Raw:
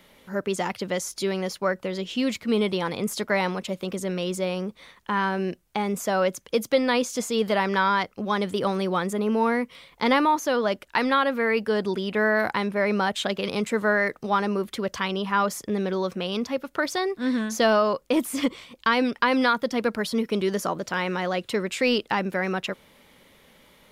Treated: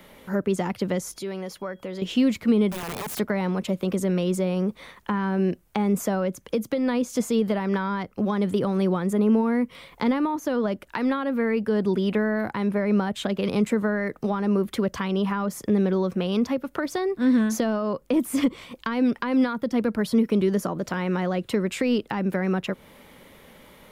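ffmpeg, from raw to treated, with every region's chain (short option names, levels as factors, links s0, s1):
-filter_complex "[0:a]asettb=1/sr,asplit=3[s0][s1][s2];[s0]atrim=end=1.134[s3];[s1]atrim=start=1.13:end=2.02,asetpts=PTS-STARTPTS,afade=t=in:d=0.004:c=qsin,afade=t=out:st=0.886:d=0.004:c=qsin,acompressor=threshold=0.00562:ratio=2:attack=3.2:release=140:knee=1:detection=peak,aeval=exprs='val(0)+0.000447*sin(2*PI*3300*n/s)':c=same[s4];[s2]atrim=start=2.016[s5];[s3][s4]acrossfade=d=0.004:c1=hsin:c2=qsin[s6];[s6][s5]acrossfade=d=0.004:c1=qsin:c2=hsin,asettb=1/sr,asplit=3[s7][s8][s9];[s7]atrim=end=2.704[s10];[s8]atrim=start=2.7:end=3.19,asetpts=PTS-STARTPTS,afade=t=in:d=0.004:c=qsin,afade=t=out:st=0.486:d=0.004:c=qsin,acompressor=threshold=0.0316:ratio=5:attack=3.2:release=140:knee=1:detection=peak,aeval=exprs='(mod(29.9*val(0)+1,2)-1)/29.9':c=same[s11];[s9]atrim=start=3.186[s12];[s10][s11]acrossfade=d=0.004:c1=hsin:c2=qsin[s13];[s13][s12]acrossfade=d=0.004:c1=qsin:c2=hsin,equalizer=f=4700:t=o:w=2.2:g=-6,alimiter=limit=0.15:level=0:latency=1:release=212,acrossover=split=320[s14][s15];[s15]acompressor=threshold=0.0158:ratio=4[s16];[s14][s16]amix=inputs=2:normalize=0,volume=2.24"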